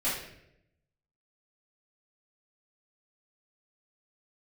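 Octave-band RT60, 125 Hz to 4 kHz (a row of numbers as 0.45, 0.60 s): 1.2, 1.0, 0.95, 0.65, 0.75, 0.60 s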